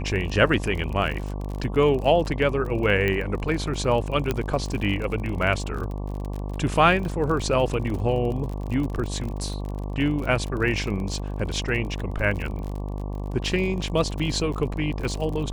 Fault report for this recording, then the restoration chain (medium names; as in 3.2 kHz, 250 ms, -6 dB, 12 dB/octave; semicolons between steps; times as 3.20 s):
buzz 50 Hz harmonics 23 -30 dBFS
crackle 38 per s -30 dBFS
3.08 s: pop -13 dBFS
4.31 s: pop -10 dBFS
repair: de-click; de-hum 50 Hz, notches 23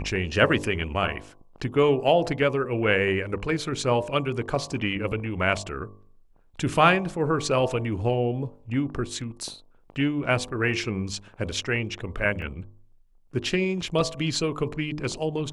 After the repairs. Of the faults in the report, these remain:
nothing left